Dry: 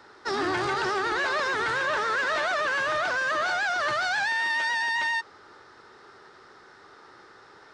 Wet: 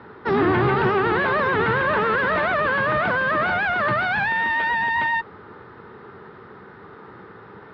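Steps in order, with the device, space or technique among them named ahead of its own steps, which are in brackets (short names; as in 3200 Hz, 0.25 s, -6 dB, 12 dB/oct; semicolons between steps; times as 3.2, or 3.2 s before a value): guitar amplifier (tube stage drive 23 dB, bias 0.45; tone controls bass +15 dB, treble -12 dB; speaker cabinet 87–3700 Hz, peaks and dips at 200 Hz +7 dB, 450 Hz +6 dB, 1000 Hz +4 dB); gain +7 dB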